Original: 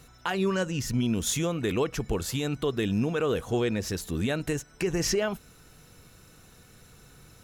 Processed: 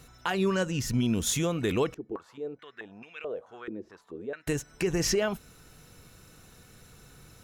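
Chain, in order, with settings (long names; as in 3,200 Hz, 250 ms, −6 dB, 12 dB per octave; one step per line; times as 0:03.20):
0:01.94–0:04.47: band-pass on a step sequencer 4.6 Hz 340–2,400 Hz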